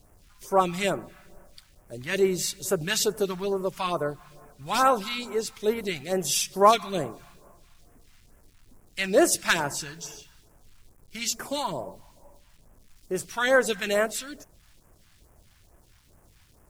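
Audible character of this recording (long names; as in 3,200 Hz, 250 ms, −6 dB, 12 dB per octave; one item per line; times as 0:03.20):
a quantiser's noise floor 10 bits, dither none
phaser sweep stages 2, 2.3 Hz, lowest notch 420–3,800 Hz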